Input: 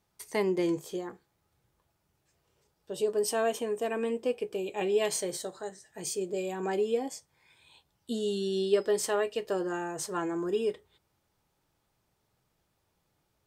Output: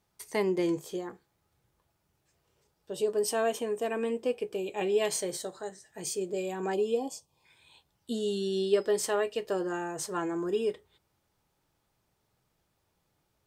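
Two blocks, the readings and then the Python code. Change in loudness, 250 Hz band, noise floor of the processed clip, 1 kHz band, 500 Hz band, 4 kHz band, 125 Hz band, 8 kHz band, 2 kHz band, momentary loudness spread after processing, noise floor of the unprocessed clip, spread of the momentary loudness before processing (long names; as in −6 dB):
0.0 dB, 0.0 dB, −77 dBFS, 0.0 dB, 0.0 dB, 0.0 dB, 0.0 dB, 0.0 dB, 0.0 dB, 11 LU, −77 dBFS, 11 LU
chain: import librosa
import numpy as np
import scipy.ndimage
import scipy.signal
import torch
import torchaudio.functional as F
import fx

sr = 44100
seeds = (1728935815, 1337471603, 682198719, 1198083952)

y = fx.spec_box(x, sr, start_s=6.74, length_s=0.71, low_hz=1200.0, high_hz=2400.0, gain_db=-18)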